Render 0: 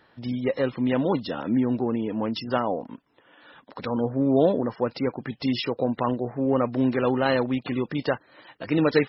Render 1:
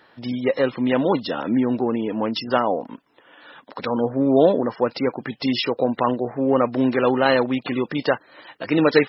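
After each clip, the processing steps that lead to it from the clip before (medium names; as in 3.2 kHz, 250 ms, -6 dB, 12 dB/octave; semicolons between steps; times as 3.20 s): bass shelf 150 Hz -12 dB; trim +6 dB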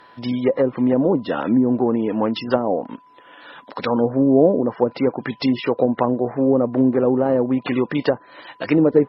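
low-pass that closes with the level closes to 520 Hz, closed at -15 dBFS; whistle 1 kHz -52 dBFS; trim +3.5 dB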